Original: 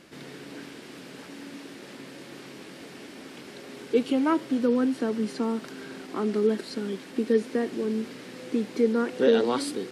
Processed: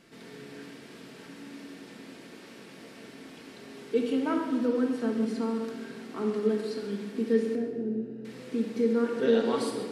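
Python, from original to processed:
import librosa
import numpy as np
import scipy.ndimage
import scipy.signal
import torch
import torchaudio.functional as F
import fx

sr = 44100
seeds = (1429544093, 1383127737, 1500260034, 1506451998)

y = fx.moving_average(x, sr, points=40, at=(7.55, 8.25))
y = fx.echo_feedback(y, sr, ms=132, feedback_pct=39, wet_db=-14.0)
y = fx.room_shoebox(y, sr, seeds[0], volume_m3=1200.0, walls='mixed', distance_m=1.6)
y = y * 10.0 ** (-7.0 / 20.0)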